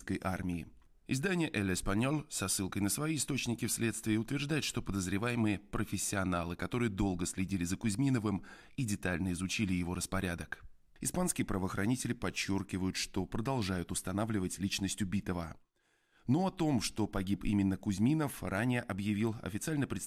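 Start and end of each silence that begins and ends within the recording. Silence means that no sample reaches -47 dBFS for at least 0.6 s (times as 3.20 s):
15.55–16.28 s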